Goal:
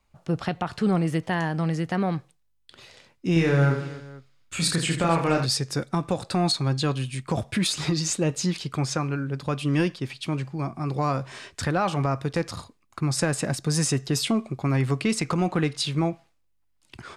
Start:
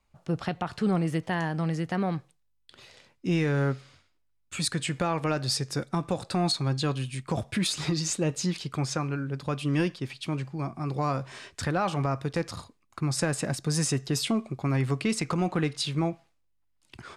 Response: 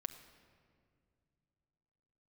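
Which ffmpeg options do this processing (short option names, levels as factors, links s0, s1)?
-filter_complex "[0:a]asettb=1/sr,asplit=3[s0][s1][s2];[s0]atrim=end=3.334[s3];[s1]atrim=start=3.33:end=5.46,asetpts=PTS-STARTPTS,afade=t=in:d=0.004:c=qsin,afade=t=out:st=2.126:d=0.004:c=qsin,aecho=1:1:30|78|154.8|277.7|474.3:0.631|0.398|0.251|0.158|0.1,atrim=end_sample=93933[s4];[s2]atrim=start=5.456[s5];[s3][s4]acrossfade=d=0.004:c1=hsin:c2=qsin[s6];[s6][s5]acrossfade=d=0.004:c1=qsin:c2=hsin,volume=1.41"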